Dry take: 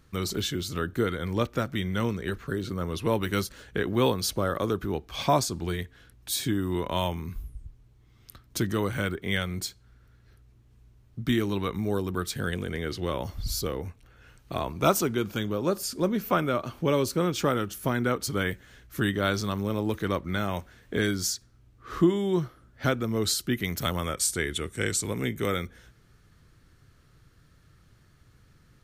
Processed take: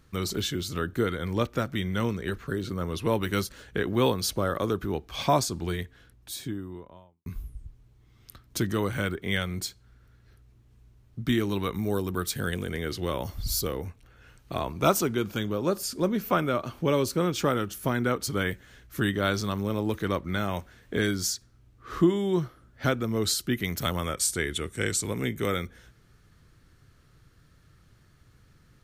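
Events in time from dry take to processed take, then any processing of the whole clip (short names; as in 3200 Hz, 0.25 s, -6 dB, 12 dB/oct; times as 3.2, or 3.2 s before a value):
5.73–7.26 studio fade out
11.5–13.85 high shelf 9300 Hz +8.5 dB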